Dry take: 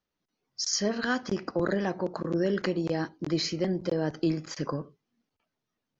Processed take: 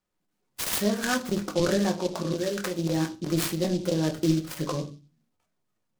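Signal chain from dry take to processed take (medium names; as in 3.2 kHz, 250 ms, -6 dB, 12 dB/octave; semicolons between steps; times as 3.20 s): 2.34–2.79 s: bass shelf 390 Hz -10 dB; simulated room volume 120 m³, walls furnished, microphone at 0.99 m; delay time shaken by noise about 4.3 kHz, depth 0.066 ms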